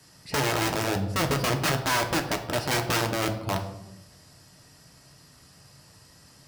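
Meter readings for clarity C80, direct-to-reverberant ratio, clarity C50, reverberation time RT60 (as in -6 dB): 12.5 dB, 3.0 dB, 10.0 dB, 0.90 s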